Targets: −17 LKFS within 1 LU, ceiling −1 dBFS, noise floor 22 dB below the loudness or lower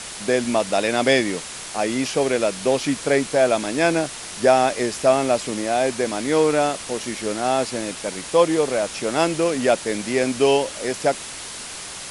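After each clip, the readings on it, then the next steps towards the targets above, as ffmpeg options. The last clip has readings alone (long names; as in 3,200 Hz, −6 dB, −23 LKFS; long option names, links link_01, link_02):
background noise floor −35 dBFS; target noise floor −43 dBFS; integrated loudness −21.0 LKFS; sample peak −3.5 dBFS; target loudness −17.0 LKFS
→ -af "afftdn=noise_reduction=8:noise_floor=-35"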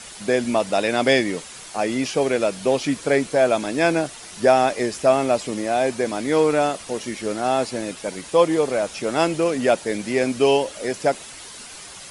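background noise floor −40 dBFS; target noise floor −44 dBFS
→ -af "afftdn=noise_reduction=6:noise_floor=-40"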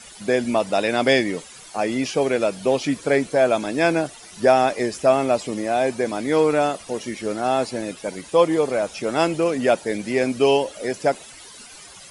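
background noise floor −43 dBFS; target noise floor −44 dBFS
→ -af "afftdn=noise_reduction=6:noise_floor=-43"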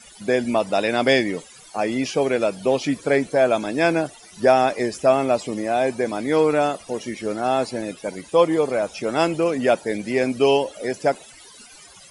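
background noise floor −46 dBFS; integrated loudness −21.5 LKFS; sample peak −3.5 dBFS; target loudness −17.0 LKFS
→ -af "volume=4.5dB,alimiter=limit=-1dB:level=0:latency=1"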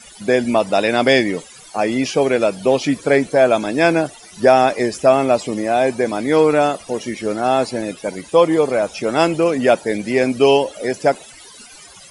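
integrated loudness −17.0 LKFS; sample peak −1.0 dBFS; background noise floor −42 dBFS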